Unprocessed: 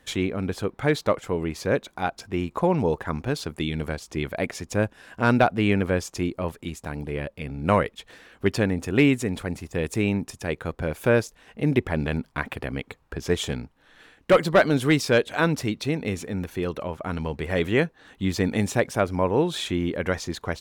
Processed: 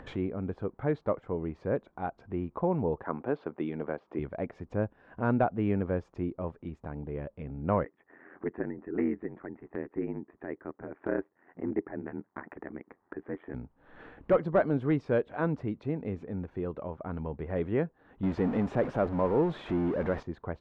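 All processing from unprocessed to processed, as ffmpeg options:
-filter_complex "[0:a]asettb=1/sr,asplit=3[a][b][c];[a]atrim=end=3.034[d];[b]atrim=start=3.03:end=4.19,asetpts=PTS-STARTPTS,afade=t=in:d=0.004:c=qsin,afade=t=out:st=1.156:d=0.004:c=qsin,highpass=290,lowpass=2.8k,acontrast=47[e];[c]atrim=start=4.186[f];[d][e]acrossfade=d=0.004:c1=hsin:c2=qsin[g];[g][f]acrossfade=d=0.004:c1=qsin:c2=hsin,asettb=1/sr,asplit=3[h][i][j];[h]atrim=end=7.844[k];[i]atrim=start=7.84:end=13.54,asetpts=PTS-STARTPTS,afade=t=in:d=0.004:c=qsin,afade=t=out:st=5.696:d=0.004:c=qsin,aeval=exprs='clip(val(0),-1,0.168)':c=same,highpass=260,equalizer=f=340:t=q:w=4:g=9,equalizer=f=490:t=q:w=4:g=-8,equalizer=f=1.9k:t=q:w=4:g=9,lowpass=f=2k:w=0.5412,lowpass=f=2k:w=1.3066,aeval=exprs='val(0)*sin(2*PI*43*n/s)':c=same[l];[j]atrim=start=13.536[m];[k][l]acrossfade=d=0.004:c1=hsin:c2=qsin[n];[n][m]acrossfade=d=0.004:c1=qsin:c2=hsin,asettb=1/sr,asplit=3[o][p][q];[o]atrim=end=18.234[r];[p]atrim=start=18.23:end=20.23,asetpts=PTS-STARTPTS,afade=t=in:d=0.004:c=qsin,afade=t=out:st=1.996:d=0.004:c=qsin,aeval=exprs='val(0)+0.5*0.0841*sgn(val(0))':c=same,equalizer=f=96:t=o:w=0.66:g=-7.5[s];[q]atrim=start=20.226[t];[r][s]acrossfade=d=0.004:c1=hsin:c2=qsin[u];[u][t]acrossfade=d=0.004:c1=qsin:c2=hsin,lowpass=1.1k,acompressor=mode=upward:threshold=-29dB:ratio=2.5,volume=-6.5dB"

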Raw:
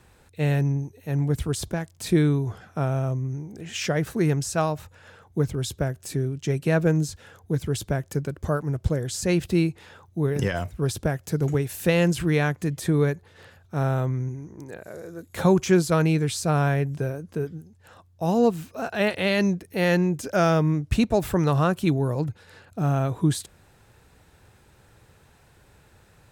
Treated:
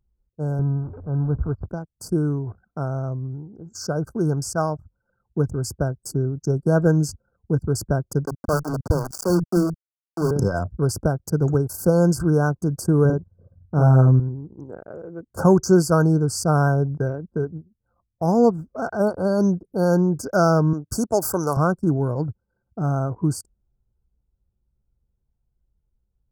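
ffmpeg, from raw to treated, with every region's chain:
-filter_complex "[0:a]asettb=1/sr,asplit=3[a][b][c];[a]atrim=end=0.594[d];[b]atrim=start=0.59:end=1.66,asetpts=PTS-STARTPTS,afade=t=in:d=0.004:c=qsin,afade=t=out:st=1.066:d=0.004:c=qsin,aeval=exprs='val(0)+0.5*0.0237*sgn(val(0))':c=same,lowpass=f=2.7k:w=0.5412,lowpass=f=2.7k:w=1.3066,lowshelf=f=80:g=11.5[e];[c]atrim=start=1.656[f];[d][e]acrossfade=d=0.004:c1=hsin:c2=qsin[g];[g][f]acrossfade=d=0.004:c1=qsin:c2=hsin,asettb=1/sr,asplit=3[h][i][j];[h]atrim=end=8.264[k];[i]atrim=start=8.26:end=10.31,asetpts=PTS-STARTPTS,afade=t=in:d=0.004:c=qsin,afade=t=out:st=2.046:d=0.004:c=qsin,aeval=exprs='val(0)*gte(abs(val(0)),0.0531)':c=same,acrossover=split=180[l][m];[l]adelay=40[n];[n][m]amix=inputs=2:normalize=0,atrim=end_sample=90405[o];[j]atrim=start=10.306[p];[k][o]acrossfade=d=0.004:c1=hsin:c2=qsin[q];[q][p]acrossfade=d=0.004:c1=qsin:c2=hsin,asettb=1/sr,asplit=3[r][s][t];[r]atrim=end=13.054[u];[s]atrim=start=13.05:end=14.2,asetpts=PTS-STARTPTS,afade=t=in:d=0.004:c=qsin,afade=t=out:st=1.146:d=0.004:c=qsin,tiltshelf=f=800:g=4,asplit=2[v][w];[w]adelay=46,volume=-3dB[x];[v][x]amix=inputs=2:normalize=0,atrim=end_sample=50715[y];[t]atrim=start=14.196[z];[u][y]acrossfade=d=0.004:c1=hsin:c2=qsin[aa];[aa][z]acrossfade=d=0.004:c1=qsin:c2=hsin,asettb=1/sr,asplit=3[ab][ac][ad];[ab]atrim=end=20.734[ae];[ac]atrim=start=20.73:end=21.57,asetpts=PTS-STARTPTS,afade=t=in:d=0.004:c=qsin,afade=t=out:st=0.836:d=0.004:c=qsin,highpass=63,bass=f=250:g=-10,treble=f=4k:g=10[af];[ad]atrim=start=21.566[ag];[ae][af]acrossfade=d=0.004:c1=hsin:c2=qsin[ah];[ah][ag]acrossfade=d=0.004:c1=qsin:c2=hsin,afftfilt=real='re*(1-between(b*sr/4096,1600,4400))':imag='im*(1-between(b*sr/4096,1600,4400))':win_size=4096:overlap=0.75,anlmdn=1.58,dynaudnorm=f=790:g=13:m=8dB,volume=-2.5dB"

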